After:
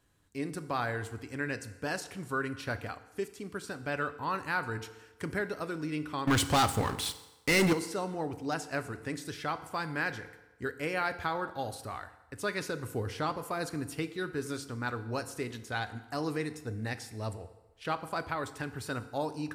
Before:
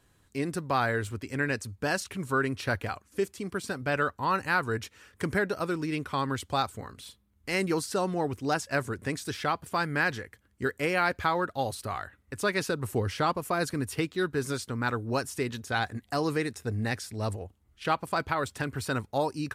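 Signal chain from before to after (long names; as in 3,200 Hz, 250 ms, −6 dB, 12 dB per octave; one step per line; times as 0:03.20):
0:06.27–0:07.73: leveller curve on the samples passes 5
feedback delay network reverb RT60 1.1 s, low-frequency decay 0.8×, high-frequency decay 0.8×, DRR 10 dB
level −6 dB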